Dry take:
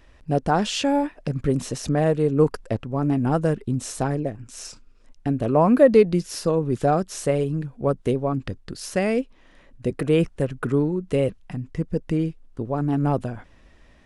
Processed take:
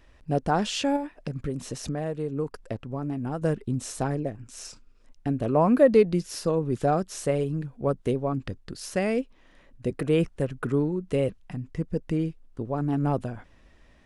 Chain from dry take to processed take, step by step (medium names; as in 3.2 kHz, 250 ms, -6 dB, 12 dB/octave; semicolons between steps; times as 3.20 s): 0.96–3.42 s: compression 2.5:1, threshold -26 dBFS, peak gain reduction 9.5 dB; trim -3.5 dB